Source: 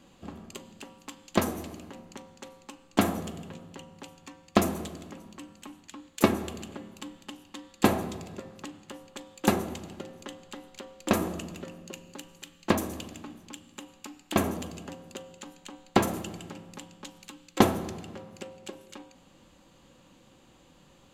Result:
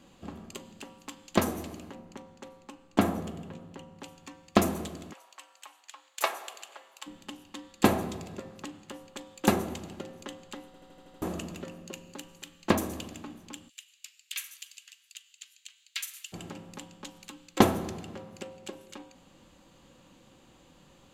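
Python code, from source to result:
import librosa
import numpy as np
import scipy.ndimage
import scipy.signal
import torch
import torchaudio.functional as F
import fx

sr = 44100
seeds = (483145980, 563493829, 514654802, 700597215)

y = fx.high_shelf(x, sr, hz=2300.0, db=-7.0, at=(1.93, 4.01))
y = fx.highpass(y, sr, hz=660.0, slope=24, at=(5.12, 7.06), fade=0.02)
y = fx.cheby2_highpass(y, sr, hz=670.0, order=4, stop_db=60, at=(13.68, 16.32), fade=0.02)
y = fx.edit(y, sr, fx.stutter_over(start_s=10.66, slice_s=0.08, count=7), tone=tone)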